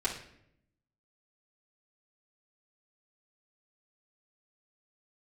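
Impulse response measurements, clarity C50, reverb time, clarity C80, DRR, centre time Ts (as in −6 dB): 8.0 dB, 0.70 s, 12.0 dB, −7.5 dB, 20 ms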